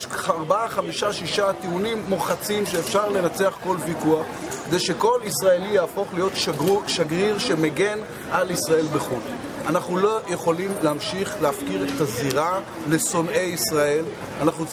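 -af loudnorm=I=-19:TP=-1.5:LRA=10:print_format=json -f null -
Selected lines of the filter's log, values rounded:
"input_i" : "-22.9",
"input_tp" : "-5.6",
"input_lra" : "1.6",
"input_thresh" : "-32.9",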